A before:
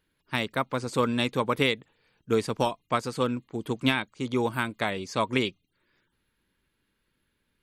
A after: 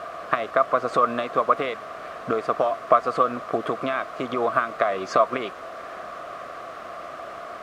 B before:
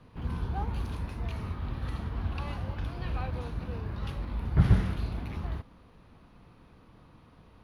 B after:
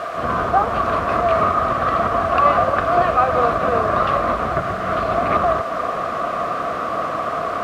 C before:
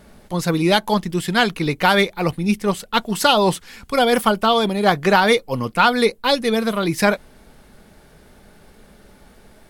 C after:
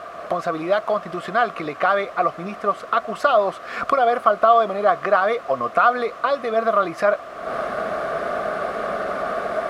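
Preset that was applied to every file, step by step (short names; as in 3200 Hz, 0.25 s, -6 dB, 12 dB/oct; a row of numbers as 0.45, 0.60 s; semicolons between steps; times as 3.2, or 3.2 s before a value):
recorder AGC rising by 75 dB/s; added noise pink -30 dBFS; double band-pass 890 Hz, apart 0.79 oct; normalise peaks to -3 dBFS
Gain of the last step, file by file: +6.5, +15.0, +6.0 dB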